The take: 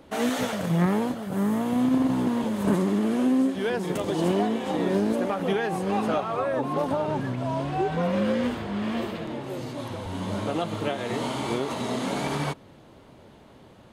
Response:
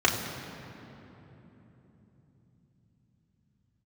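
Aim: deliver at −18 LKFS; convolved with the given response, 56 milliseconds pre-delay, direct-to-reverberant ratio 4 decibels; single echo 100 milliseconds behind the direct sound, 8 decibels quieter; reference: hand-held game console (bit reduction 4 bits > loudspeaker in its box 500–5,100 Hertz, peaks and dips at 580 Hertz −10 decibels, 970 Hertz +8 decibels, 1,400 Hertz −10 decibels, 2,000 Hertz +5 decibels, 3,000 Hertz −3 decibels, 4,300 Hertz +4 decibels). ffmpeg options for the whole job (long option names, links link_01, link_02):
-filter_complex "[0:a]aecho=1:1:100:0.398,asplit=2[link_01][link_02];[1:a]atrim=start_sample=2205,adelay=56[link_03];[link_02][link_03]afir=irnorm=-1:irlink=0,volume=-19.5dB[link_04];[link_01][link_04]amix=inputs=2:normalize=0,acrusher=bits=3:mix=0:aa=0.000001,highpass=500,equalizer=frequency=580:width_type=q:width=4:gain=-10,equalizer=frequency=970:width_type=q:width=4:gain=8,equalizer=frequency=1400:width_type=q:width=4:gain=-10,equalizer=frequency=2000:width_type=q:width=4:gain=5,equalizer=frequency=3000:width_type=q:width=4:gain=-3,equalizer=frequency=4300:width_type=q:width=4:gain=4,lowpass=frequency=5100:width=0.5412,lowpass=frequency=5100:width=1.3066,volume=8dB"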